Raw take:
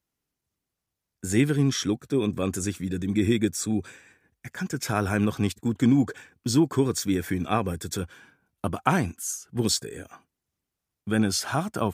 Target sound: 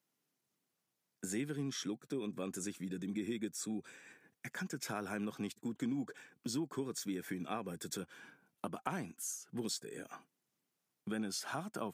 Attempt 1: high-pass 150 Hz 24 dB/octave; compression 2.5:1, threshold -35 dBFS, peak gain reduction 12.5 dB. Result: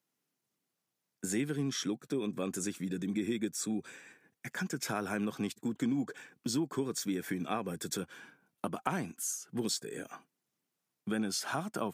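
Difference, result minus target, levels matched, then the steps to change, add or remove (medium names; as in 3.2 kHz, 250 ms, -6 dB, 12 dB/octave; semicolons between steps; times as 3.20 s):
compression: peak gain reduction -5.5 dB
change: compression 2.5:1, threshold -44 dBFS, peak gain reduction 18 dB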